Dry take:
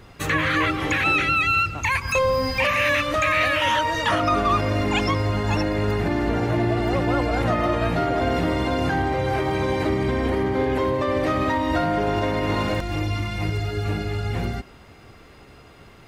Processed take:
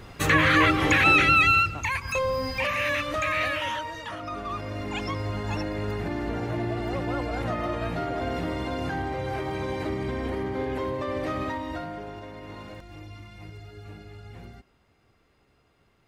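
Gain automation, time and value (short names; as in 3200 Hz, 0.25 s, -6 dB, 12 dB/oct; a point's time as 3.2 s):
1.45 s +2 dB
1.92 s -6 dB
3.48 s -6 dB
4.12 s -15.5 dB
5.28 s -7.5 dB
11.41 s -7.5 dB
12.23 s -18 dB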